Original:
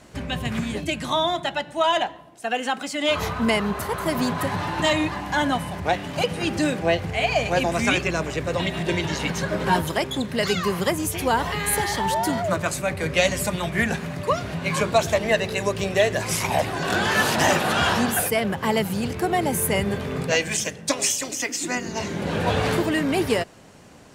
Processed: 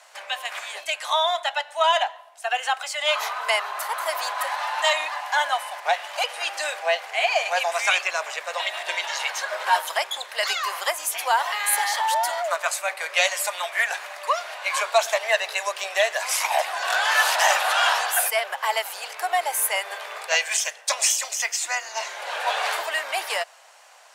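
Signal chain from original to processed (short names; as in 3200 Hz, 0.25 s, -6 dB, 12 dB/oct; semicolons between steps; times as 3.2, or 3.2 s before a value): steep high-pass 650 Hz 36 dB/oct; gain +2 dB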